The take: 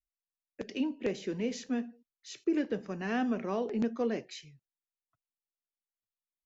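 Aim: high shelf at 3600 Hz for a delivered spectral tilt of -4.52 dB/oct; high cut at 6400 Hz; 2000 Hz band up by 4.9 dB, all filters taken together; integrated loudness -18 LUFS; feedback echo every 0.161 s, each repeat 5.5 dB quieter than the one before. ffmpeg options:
-af "lowpass=6.4k,equalizer=f=2k:t=o:g=7.5,highshelf=f=3.6k:g=-5,aecho=1:1:161|322|483|644|805|966|1127:0.531|0.281|0.149|0.079|0.0419|0.0222|0.0118,volume=14.5dB"

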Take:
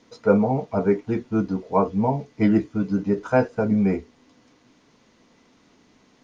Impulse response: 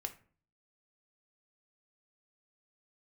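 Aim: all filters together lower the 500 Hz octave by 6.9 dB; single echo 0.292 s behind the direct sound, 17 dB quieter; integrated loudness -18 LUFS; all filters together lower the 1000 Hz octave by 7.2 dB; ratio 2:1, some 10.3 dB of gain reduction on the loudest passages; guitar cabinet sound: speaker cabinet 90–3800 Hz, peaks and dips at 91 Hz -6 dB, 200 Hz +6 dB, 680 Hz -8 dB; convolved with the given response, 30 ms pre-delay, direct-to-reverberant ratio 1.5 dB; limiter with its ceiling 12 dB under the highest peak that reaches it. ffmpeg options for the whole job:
-filter_complex "[0:a]equalizer=f=500:t=o:g=-6,equalizer=f=1k:t=o:g=-4.5,acompressor=threshold=-35dB:ratio=2,alimiter=level_in=7.5dB:limit=-24dB:level=0:latency=1,volume=-7.5dB,aecho=1:1:292:0.141,asplit=2[a][b];[1:a]atrim=start_sample=2205,adelay=30[c];[b][c]afir=irnorm=-1:irlink=0,volume=0dB[d];[a][d]amix=inputs=2:normalize=0,highpass=90,equalizer=f=91:t=q:w=4:g=-6,equalizer=f=200:t=q:w=4:g=6,equalizer=f=680:t=q:w=4:g=-8,lowpass=f=3.8k:w=0.5412,lowpass=f=3.8k:w=1.3066,volume=17.5dB"

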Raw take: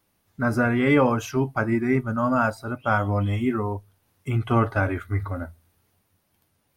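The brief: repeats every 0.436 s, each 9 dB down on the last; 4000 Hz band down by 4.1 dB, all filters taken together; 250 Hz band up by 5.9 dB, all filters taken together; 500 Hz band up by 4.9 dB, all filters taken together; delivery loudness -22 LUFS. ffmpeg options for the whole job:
-af "equalizer=f=250:t=o:g=5.5,equalizer=f=500:t=o:g=4.5,equalizer=f=4k:t=o:g=-6,aecho=1:1:436|872|1308|1744:0.355|0.124|0.0435|0.0152,volume=-2.5dB"

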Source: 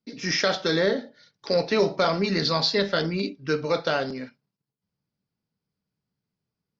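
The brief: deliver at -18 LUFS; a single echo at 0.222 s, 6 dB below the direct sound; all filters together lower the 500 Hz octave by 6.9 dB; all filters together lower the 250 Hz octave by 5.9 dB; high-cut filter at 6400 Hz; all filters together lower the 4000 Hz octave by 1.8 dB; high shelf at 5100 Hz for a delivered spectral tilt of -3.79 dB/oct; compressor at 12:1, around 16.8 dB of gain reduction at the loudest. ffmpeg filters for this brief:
-af "lowpass=6.4k,equalizer=f=250:t=o:g=-7,equalizer=f=500:t=o:g=-6.5,equalizer=f=4k:t=o:g=-4.5,highshelf=f=5.1k:g=7,acompressor=threshold=-39dB:ratio=12,aecho=1:1:222:0.501,volume=24dB"

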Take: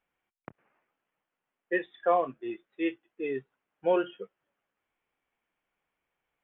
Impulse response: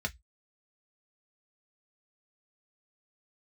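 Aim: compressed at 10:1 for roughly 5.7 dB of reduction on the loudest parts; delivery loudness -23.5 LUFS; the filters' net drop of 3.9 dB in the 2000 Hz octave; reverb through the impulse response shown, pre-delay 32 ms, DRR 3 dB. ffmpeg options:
-filter_complex "[0:a]equalizer=f=2k:t=o:g=-4.5,acompressor=threshold=-25dB:ratio=10,asplit=2[a][b];[1:a]atrim=start_sample=2205,adelay=32[c];[b][c]afir=irnorm=-1:irlink=0,volume=-7dB[d];[a][d]amix=inputs=2:normalize=0,volume=10.5dB"

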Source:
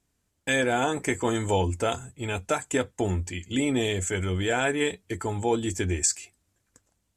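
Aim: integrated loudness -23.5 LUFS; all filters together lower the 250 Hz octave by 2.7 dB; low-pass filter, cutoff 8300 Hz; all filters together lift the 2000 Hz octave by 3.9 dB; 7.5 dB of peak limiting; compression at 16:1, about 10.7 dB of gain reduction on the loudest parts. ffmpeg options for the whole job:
-af "lowpass=8.3k,equalizer=f=250:t=o:g=-3.5,equalizer=f=2k:t=o:g=5,acompressor=threshold=-30dB:ratio=16,volume=13dB,alimiter=limit=-12dB:level=0:latency=1"

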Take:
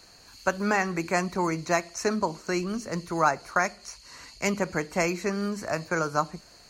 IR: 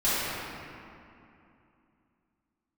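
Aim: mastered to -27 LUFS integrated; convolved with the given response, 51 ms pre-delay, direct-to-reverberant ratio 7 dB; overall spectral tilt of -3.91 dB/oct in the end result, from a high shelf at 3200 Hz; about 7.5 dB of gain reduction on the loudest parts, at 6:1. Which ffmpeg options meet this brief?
-filter_complex "[0:a]highshelf=f=3.2k:g=5.5,acompressor=threshold=-25dB:ratio=6,asplit=2[a][b];[1:a]atrim=start_sample=2205,adelay=51[c];[b][c]afir=irnorm=-1:irlink=0,volume=-22dB[d];[a][d]amix=inputs=2:normalize=0,volume=4dB"

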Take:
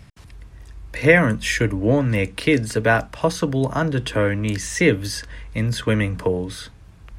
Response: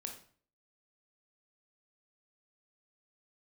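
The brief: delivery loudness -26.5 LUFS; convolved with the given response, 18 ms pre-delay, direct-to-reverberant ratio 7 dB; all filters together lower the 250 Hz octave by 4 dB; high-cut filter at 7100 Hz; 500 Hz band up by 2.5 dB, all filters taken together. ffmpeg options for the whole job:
-filter_complex "[0:a]lowpass=7.1k,equalizer=f=250:t=o:g=-7,equalizer=f=500:t=o:g=4.5,asplit=2[a][b];[1:a]atrim=start_sample=2205,adelay=18[c];[b][c]afir=irnorm=-1:irlink=0,volume=-4.5dB[d];[a][d]amix=inputs=2:normalize=0,volume=-7dB"

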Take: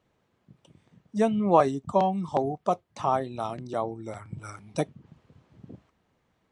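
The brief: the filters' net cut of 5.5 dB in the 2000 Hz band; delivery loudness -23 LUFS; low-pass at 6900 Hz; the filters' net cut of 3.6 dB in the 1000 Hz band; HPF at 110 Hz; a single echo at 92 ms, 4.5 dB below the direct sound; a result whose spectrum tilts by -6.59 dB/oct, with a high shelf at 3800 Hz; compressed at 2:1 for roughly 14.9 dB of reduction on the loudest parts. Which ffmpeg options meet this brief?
-af "highpass=110,lowpass=6.9k,equalizer=f=1k:t=o:g=-4,equalizer=f=2k:t=o:g=-7.5,highshelf=f=3.8k:g=6.5,acompressor=threshold=-44dB:ratio=2,aecho=1:1:92:0.596,volume=17dB"

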